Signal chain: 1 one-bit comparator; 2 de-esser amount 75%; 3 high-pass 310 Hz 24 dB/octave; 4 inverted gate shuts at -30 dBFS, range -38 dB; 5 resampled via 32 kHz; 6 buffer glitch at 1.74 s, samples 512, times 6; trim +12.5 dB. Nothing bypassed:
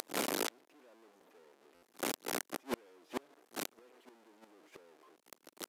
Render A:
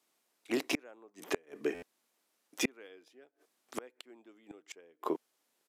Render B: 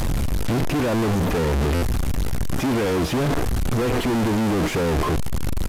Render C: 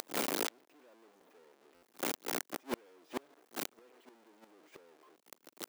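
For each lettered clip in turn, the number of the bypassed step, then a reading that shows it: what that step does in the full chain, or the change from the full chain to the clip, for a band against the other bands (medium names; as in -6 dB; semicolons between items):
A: 1, 8 kHz band -5.5 dB; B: 3, 125 Hz band +22.5 dB; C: 5, loudness change +1.0 LU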